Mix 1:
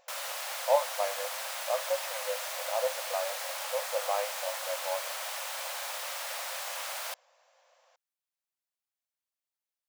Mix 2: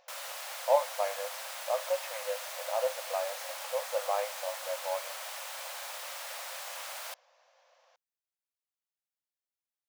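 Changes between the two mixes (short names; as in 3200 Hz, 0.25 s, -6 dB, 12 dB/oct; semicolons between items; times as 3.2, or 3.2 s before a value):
speech: add steep low-pass 6500 Hz; background -4.0 dB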